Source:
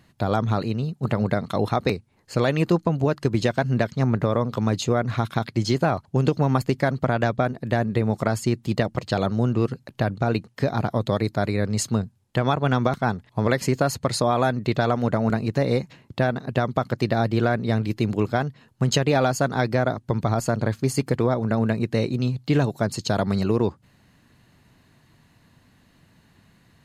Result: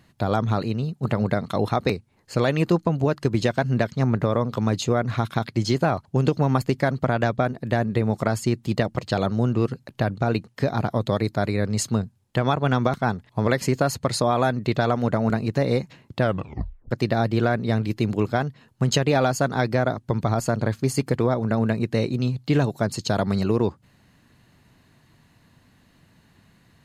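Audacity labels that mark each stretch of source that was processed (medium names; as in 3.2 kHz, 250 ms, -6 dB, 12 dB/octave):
16.200000	16.200000	tape stop 0.71 s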